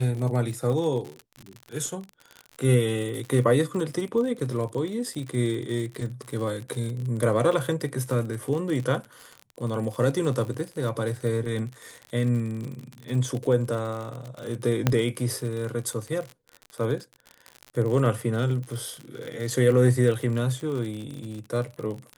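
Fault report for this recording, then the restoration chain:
surface crackle 53 per second −31 dBFS
0:14.87: click −6 dBFS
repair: click removal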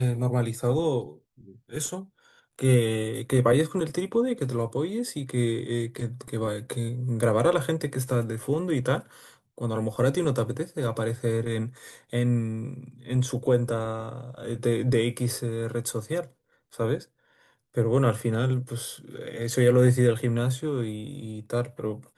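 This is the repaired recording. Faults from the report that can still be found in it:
none of them is left

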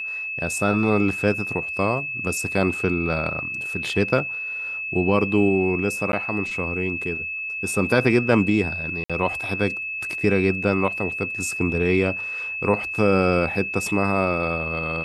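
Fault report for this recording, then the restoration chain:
whistle 2,600 Hz −27 dBFS
0:06.12–0:06.13: drop-out 11 ms
0:09.04–0:09.10: drop-out 56 ms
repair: notch filter 2,600 Hz, Q 30
repair the gap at 0:06.12, 11 ms
repair the gap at 0:09.04, 56 ms

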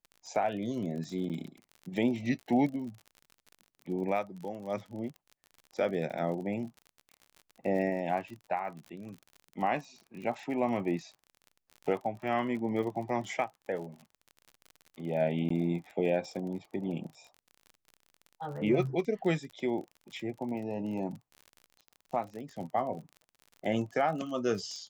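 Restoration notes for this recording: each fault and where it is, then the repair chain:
surface crackle 40 per second −40 dBFS
0:01.29–0:01.30: drop-out 7.8 ms
0:15.49–0:15.50: drop-out 14 ms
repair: click removal
repair the gap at 0:01.29, 7.8 ms
repair the gap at 0:15.49, 14 ms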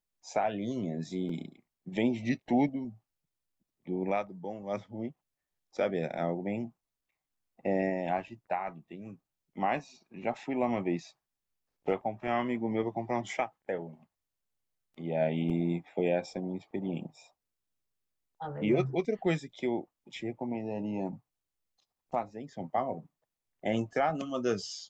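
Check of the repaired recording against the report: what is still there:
none of them is left

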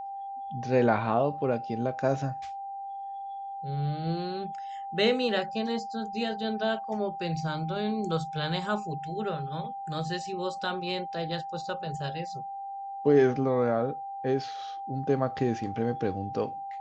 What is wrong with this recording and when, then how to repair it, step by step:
whistle 790 Hz −35 dBFS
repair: notch filter 790 Hz, Q 30

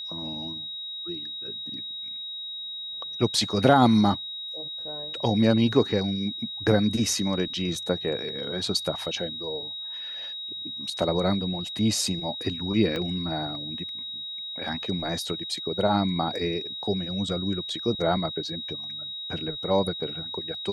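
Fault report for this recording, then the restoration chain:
whistle 3,800 Hz −33 dBFS
0:12.96: drop-out 2.6 ms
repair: notch filter 3,800 Hz, Q 30
repair the gap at 0:12.96, 2.6 ms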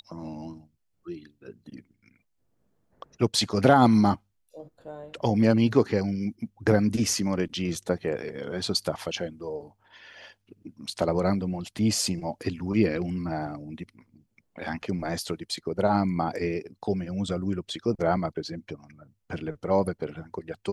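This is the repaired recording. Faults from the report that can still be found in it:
none of them is left

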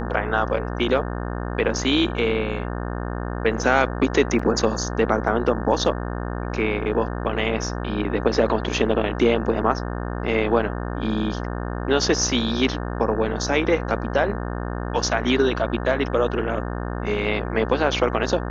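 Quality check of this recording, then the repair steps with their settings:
mains buzz 60 Hz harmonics 30 −28 dBFS
0:04.39: drop-out 4.6 ms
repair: hum removal 60 Hz, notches 30
repair the gap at 0:04.39, 4.6 ms

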